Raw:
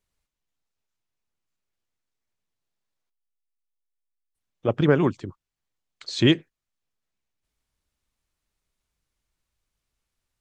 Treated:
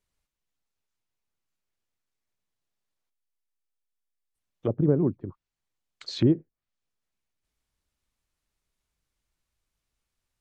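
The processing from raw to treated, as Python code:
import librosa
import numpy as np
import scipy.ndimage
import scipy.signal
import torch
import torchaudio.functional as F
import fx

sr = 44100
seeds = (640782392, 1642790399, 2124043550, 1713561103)

y = fx.env_lowpass_down(x, sr, base_hz=440.0, full_db=-21.5)
y = y * 10.0 ** (-1.5 / 20.0)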